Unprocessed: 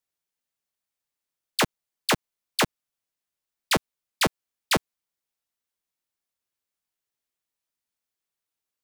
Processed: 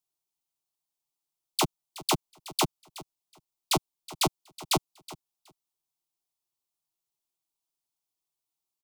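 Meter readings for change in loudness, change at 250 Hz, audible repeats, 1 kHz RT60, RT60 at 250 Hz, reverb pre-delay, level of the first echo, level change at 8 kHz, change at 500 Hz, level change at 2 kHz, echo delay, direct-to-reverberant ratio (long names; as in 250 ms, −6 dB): −3.0 dB, −3.5 dB, 2, no reverb audible, no reverb audible, no reverb audible, −18.0 dB, −0.5 dB, −4.0 dB, −10.5 dB, 371 ms, no reverb audible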